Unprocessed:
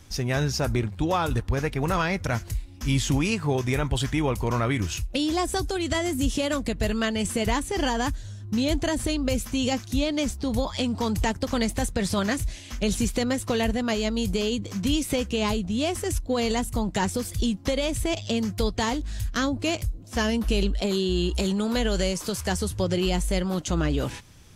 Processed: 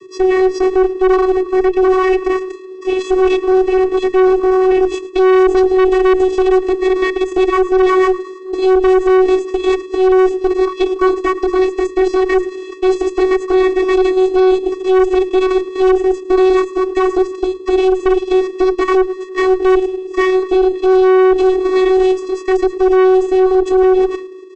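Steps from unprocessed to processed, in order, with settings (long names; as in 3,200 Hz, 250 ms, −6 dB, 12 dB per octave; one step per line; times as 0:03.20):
high-shelf EQ 3,400 Hz −12 dB
notch filter 1,200 Hz, Q 5.5
double-tracking delay 17 ms −6.5 dB
in parallel at −8.5 dB: sample-and-hold swept by an LFO 21×, swing 100% 0.33 Hz
on the sum: output level in coarse steps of 12 dB
on a send: repeating echo 108 ms, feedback 58%, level −19 dB
on the sum: channel vocoder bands 16, square 374 Hz
tube saturation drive 26 dB, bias 0.55
mains-hum notches 60/120/180/240/300/360 Hz
boost into a limiter +28.5 dB
level −4 dB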